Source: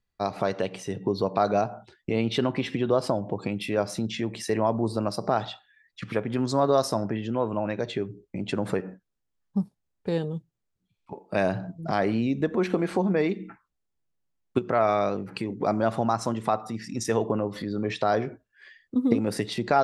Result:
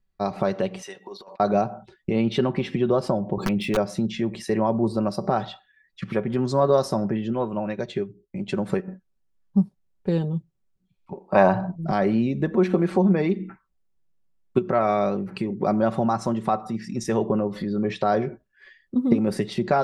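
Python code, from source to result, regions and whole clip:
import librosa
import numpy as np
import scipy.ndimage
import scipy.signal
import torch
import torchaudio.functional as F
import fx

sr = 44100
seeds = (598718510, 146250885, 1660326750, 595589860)

y = fx.chain(x, sr, fx.highpass(hz=1000.0, slope=12),
    fx.over_compress(threshold_db=-41.0, ratio=-0.5), at=(0.82, 1.4))
y = fx.chain(y, sr, fx.median_filter(points=3),
    fx.overflow_wrap(gain_db=17.5),
    fx.env_flatten(amount_pct=50), at=(3.37, 3.77))
y = fx.chain(y, sr, fx.high_shelf(hz=2300.0, db=6.0),
    fx.upward_expand(threshold_db=-44.0, expansion=1.5), at=(7.33, 8.88))
y = fx.chain(y, sr, fx.lowpass(hz=8300.0, slope=24),
    fx.peak_eq(hz=960.0, db=15.0, octaves=1.1), at=(11.28, 11.76))
y = fx.tilt_eq(y, sr, slope=-1.5)
y = y + 0.48 * np.pad(y, (int(5.3 * sr / 1000.0), 0))[:len(y)]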